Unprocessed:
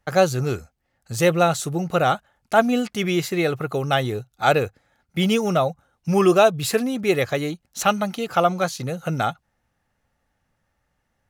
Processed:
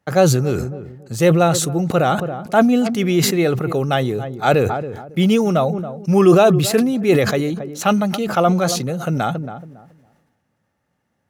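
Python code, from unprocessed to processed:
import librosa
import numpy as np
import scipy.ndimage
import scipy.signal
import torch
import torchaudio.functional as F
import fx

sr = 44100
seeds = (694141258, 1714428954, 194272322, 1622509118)

p1 = scipy.signal.sosfilt(scipy.signal.butter(2, 160.0, 'highpass', fs=sr, output='sos'), x)
p2 = fx.low_shelf(p1, sr, hz=430.0, db=10.0)
p3 = p2 + fx.echo_filtered(p2, sr, ms=277, feedback_pct=29, hz=830.0, wet_db=-18.5, dry=0)
p4 = fx.sustainer(p3, sr, db_per_s=45.0)
y = p4 * 10.0 ** (-1.0 / 20.0)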